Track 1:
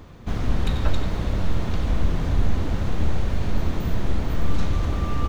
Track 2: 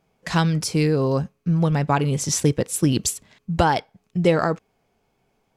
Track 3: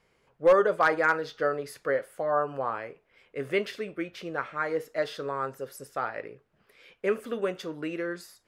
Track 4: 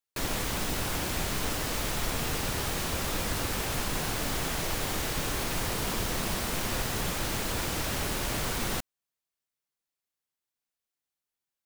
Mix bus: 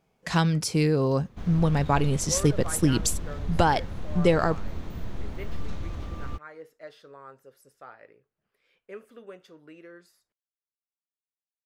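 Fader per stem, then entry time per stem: -11.5 dB, -3.0 dB, -15.0 dB, mute; 1.10 s, 0.00 s, 1.85 s, mute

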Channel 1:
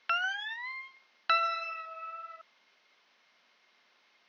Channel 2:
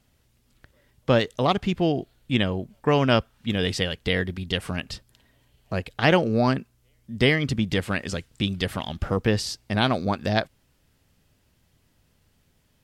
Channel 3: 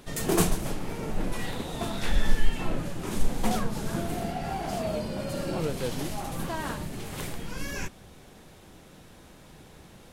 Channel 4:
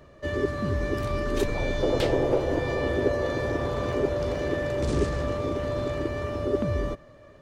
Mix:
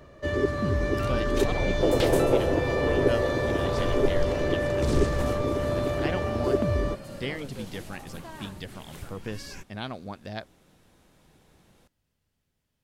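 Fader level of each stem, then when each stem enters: -13.0 dB, -13.5 dB, -9.5 dB, +1.5 dB; 0.90 s, 0.00 s, 1.75 s, 0.00 s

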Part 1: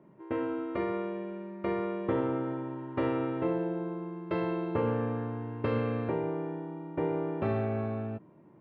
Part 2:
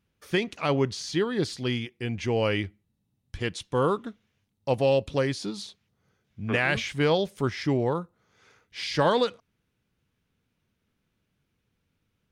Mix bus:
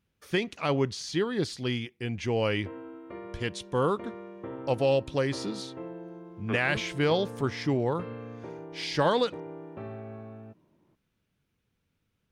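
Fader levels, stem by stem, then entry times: -10.0 dB, -2.0 dB; 2.35 s, 0.00 s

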